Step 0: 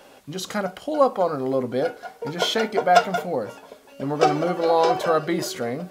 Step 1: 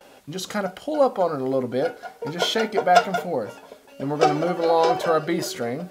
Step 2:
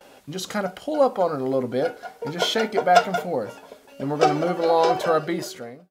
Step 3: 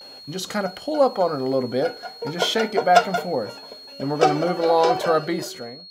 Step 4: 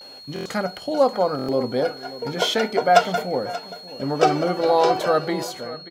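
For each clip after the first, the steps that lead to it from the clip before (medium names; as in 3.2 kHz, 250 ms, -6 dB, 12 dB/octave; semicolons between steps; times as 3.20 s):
band-stop 1.1 kHz, Q 17; gate with hold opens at -42 dBFS
fade out at the end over 0.74 s
whistle 4.3 kHz -41 dBFS; trim +1 dB
delay 583 ms -16 dB; buffer glitch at 0.34/1.37 s, samples 1024, times 4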